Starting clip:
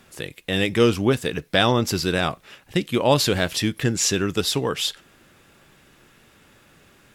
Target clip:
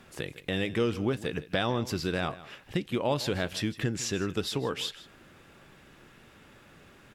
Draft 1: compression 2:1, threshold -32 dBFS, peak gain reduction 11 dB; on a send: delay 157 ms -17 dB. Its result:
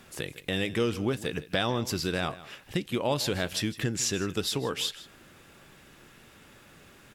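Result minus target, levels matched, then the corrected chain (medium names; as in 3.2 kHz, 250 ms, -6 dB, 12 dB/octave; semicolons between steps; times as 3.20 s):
8 kHz band +4.5 dB
compression 2:1, threshold -32 dBFS, peak gain reduction 11 dB; treble shelf 4.8 kHz -8.5 dB; on a send: delay 157 ms -17 dB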